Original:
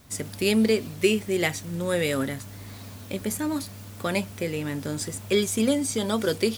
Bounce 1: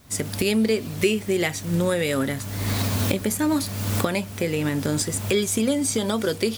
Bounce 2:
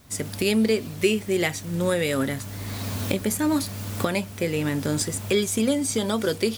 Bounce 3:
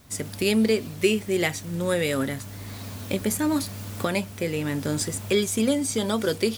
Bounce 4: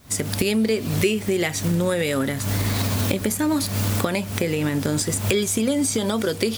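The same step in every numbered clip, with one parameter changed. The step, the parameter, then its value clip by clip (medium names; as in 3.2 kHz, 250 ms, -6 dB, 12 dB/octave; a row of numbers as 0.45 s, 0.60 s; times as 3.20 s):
recorder AGC, rising by: 35 dB/s, 14 dB/s, 5.5 dB/s, 86 dB/s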